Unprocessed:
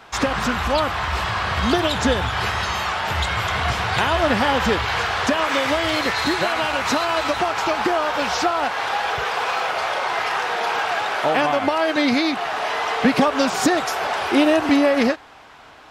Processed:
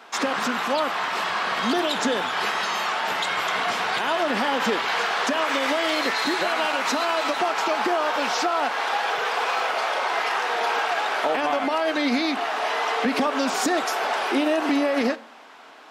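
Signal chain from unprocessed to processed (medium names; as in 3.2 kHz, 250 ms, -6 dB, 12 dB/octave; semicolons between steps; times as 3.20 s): high-pass 220 Hz 24 dB/octave; peak limiter -12 dBFS, peak gain reduction 8 dB; on a send: reverberation RT60 0.60 s, pre-delay 4 ms, DRR 17 dB; on the sum: trim -1.5 dB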